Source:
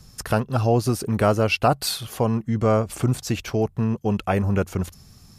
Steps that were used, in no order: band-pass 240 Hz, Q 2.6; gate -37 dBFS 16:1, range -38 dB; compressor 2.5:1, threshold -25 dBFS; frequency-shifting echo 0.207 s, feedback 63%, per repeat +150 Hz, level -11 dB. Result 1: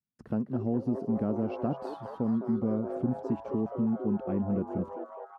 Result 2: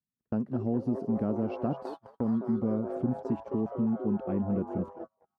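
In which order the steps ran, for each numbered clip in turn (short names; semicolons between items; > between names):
gate > band-pass > frequency-shifting echo > compressor; band-pass > frequency-shifting echo > compressor > gate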